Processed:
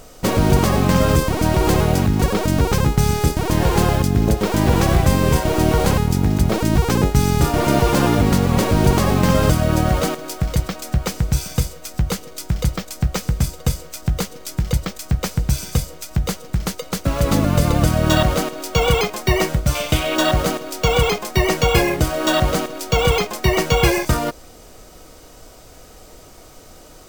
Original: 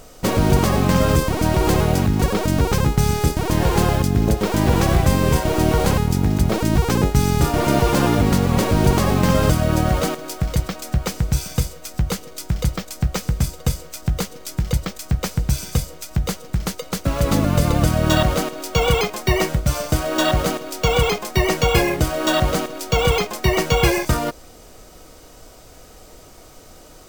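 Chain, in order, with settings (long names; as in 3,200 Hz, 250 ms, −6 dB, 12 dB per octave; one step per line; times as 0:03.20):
0:19.75–0:20.16: flat-topped bell 2,800 Hz +10.5 dB 1 octave
level +1 dB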